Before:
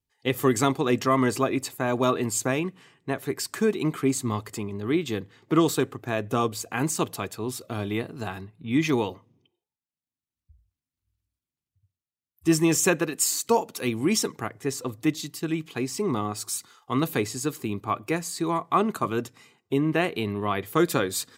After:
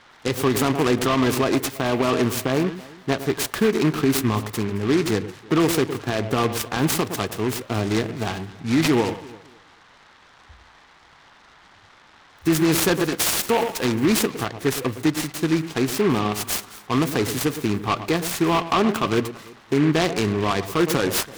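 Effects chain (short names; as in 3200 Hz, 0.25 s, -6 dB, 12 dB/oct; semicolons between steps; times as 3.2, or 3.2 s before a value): spectral gain 2.29–2.67, 1700–8800 Hz -8 dB; band noise 750–2200 Hz -59 dBFS; on a send: echo with dull and thin repeats by turns 0.11 s, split 1000 Hz, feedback 52%, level -13 dB; on the sum: maximiser +16 dB; noise-modulated delay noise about 1600 Hz, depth 0.072 ms; gain -9 dB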